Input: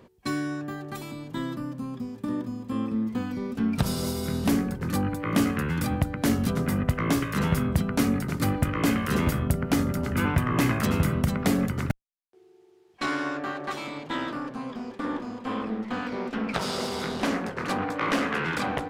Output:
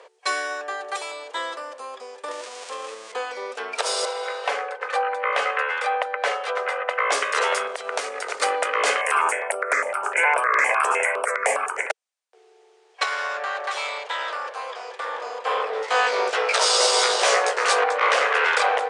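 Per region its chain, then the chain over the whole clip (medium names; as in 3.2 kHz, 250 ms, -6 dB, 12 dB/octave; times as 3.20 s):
2.31–3.12 s: zero-crossing glitches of -26 dBFS + compression 2.5:1, threshold -30 dBFS + distance through air 51 m
4.05–7.12 s: three-band isolator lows -23 dB, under 430 Hz, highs -17 dB, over 3.4 kHz + comb 3.9 ms, depth 41%
7.67–8.38 s: companding laws mixed up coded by mu + compression 10:1, threshold -26 dBFS
9.01–11.90 s: FFT filter 360 Hz 0 dB, 1.3 kHz +7 dB, 2.3 kHz +9 dB, 3.9 kHz -21 dB, 8.1 kHz +4 dB + stepped phaser 9.8 Hz 360–6700 Hz
13.03–15.21 s: bass shelf 480 Hz -9 dB + compression 3:1, threshold -33 dBFS
15.73–17.84 s: tone controls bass +5 dB, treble +9 dB + doubling 16 ms -2 dB
whole clip: Chebyshev band-pass 450–9400 Hz, order 5; loudness maximiser +18.5 dB; trim -7.5 dB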